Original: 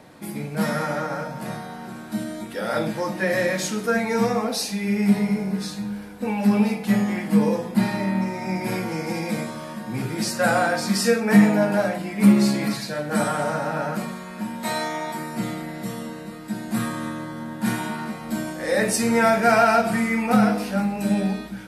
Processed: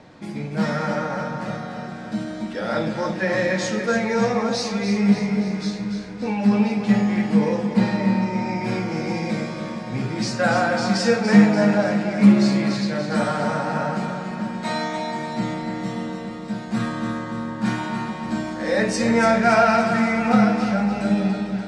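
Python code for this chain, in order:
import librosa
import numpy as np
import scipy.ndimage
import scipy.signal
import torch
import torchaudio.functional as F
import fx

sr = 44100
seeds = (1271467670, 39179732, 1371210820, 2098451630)

p1 = scipy.signal.sosfilt(scipy.signal.butter(4, 6700.0, 'lowpass', fs=sr, output='sos'), x)
p2 = fx.low_shelf(p1, sr, hz=120.0, db=4.5)
y = p2 + fx.echo_feedback(p2, sr, ms=289, feedback_pct=56, wet_db=-8, dry=0)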